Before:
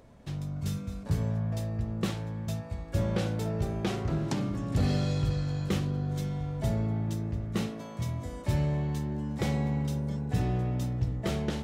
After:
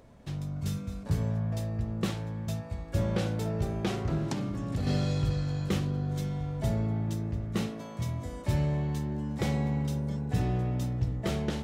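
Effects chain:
0:04.26–0:04.87: downward compressor, threshold −28 dBFS, peak gain reduction 6 dB

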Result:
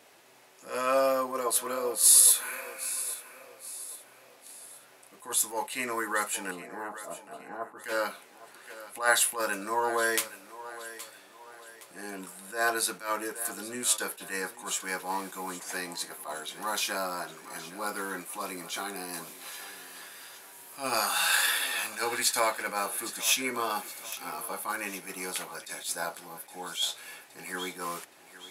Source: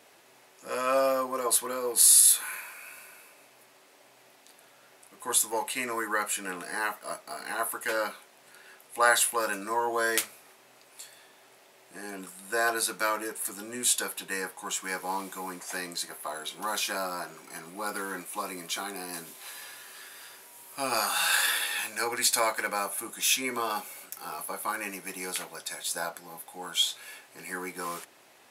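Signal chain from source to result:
0:06.51–0:07.84: Bessel low-pass filter 680 Hz, order 2
on a send: feedback echo with a high-pass in the loop 818 ms, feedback 42%, high-pass 200 Hz, level −15.5 dB
on the sum: level that may rise only so fast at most 170 dB per second

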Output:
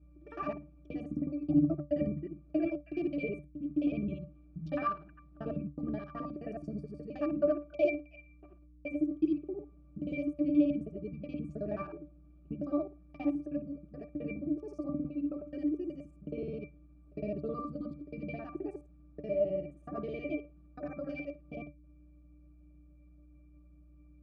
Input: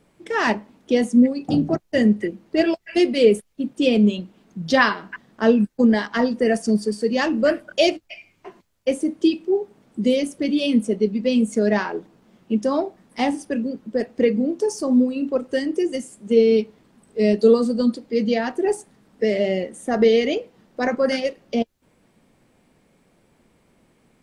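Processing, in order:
reversed piece by piece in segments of 53 ms
mains hum 60 Hz, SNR 27 dB
resonances in every octave D, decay 0.2 s

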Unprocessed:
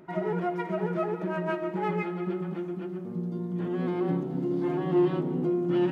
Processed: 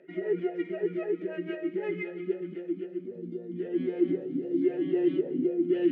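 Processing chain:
formant filter swept between two vowels e-i 3.8 Hz
level +8 dB

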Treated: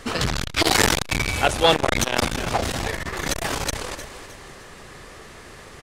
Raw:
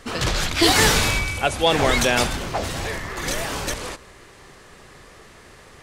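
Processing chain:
repeating echo 308 ms, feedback 37%, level −14.5 dB
saturating transformer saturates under 1,000 Hz
level +4 dB

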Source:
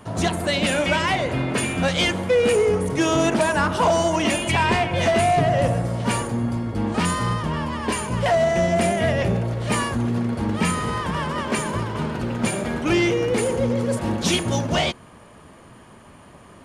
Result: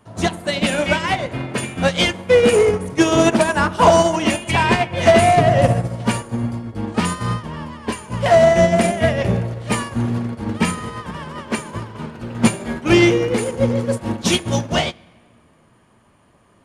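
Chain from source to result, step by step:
0:12.33–0:12.81: double-tracking delay 18 ms −5 dB
convolution reverb RT60 1.8 s, pre-delay 9 ms, DRR 12 dB
expander for the loud parts 2.5 to 1, over −27 dBFS
level +8.5 dB

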